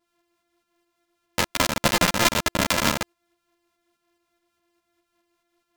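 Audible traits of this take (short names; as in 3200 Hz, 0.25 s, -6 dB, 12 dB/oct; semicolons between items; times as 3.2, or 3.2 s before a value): a buzz of ramps at a fixed pitch in blocks of 128 samples; tremolo saw up 4.8 Hz, depth 45%; a shimmering, thickened sound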